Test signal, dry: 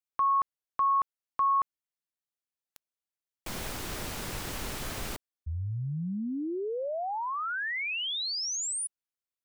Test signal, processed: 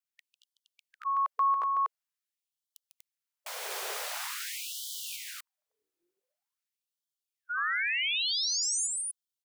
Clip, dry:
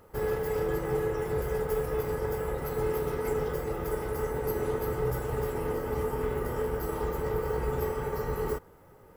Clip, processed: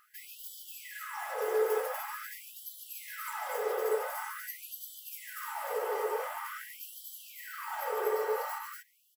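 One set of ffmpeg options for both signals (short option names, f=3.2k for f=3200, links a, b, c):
-af "aecho=1:1:148.7|242:0.501|0.794,afftfilt=real='re*gte(b*sr/1024,350*pow(3000/350,0.5+0.5*sin(2*PI*0.46*pts/sr)))':imag='im*gte(b*sr/1024,350*pow(3000/350,0.5+0.5*sin(2*PI*0.46*pts/sr)))':win_size=1024:overlap=0.75"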